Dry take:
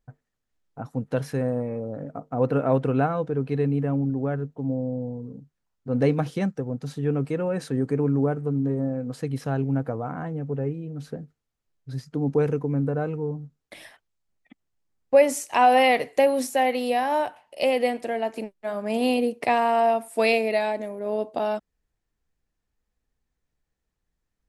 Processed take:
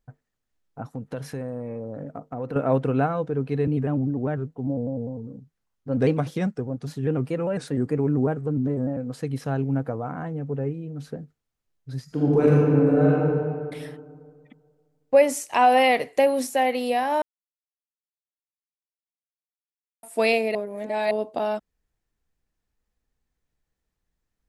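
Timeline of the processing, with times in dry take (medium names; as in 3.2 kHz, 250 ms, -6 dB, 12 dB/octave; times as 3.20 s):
0.91–2.56 s: compression 3:1, threshold -29 dBFS
3.67–8.97 s: vibrato with a chosen wave square 5 Hz, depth 100 cents
12.04–13.26 s: reverb throw, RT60 2 s, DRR -5.5 dB
17.22–20.03 s: mute
20.55–21.11 s: reverse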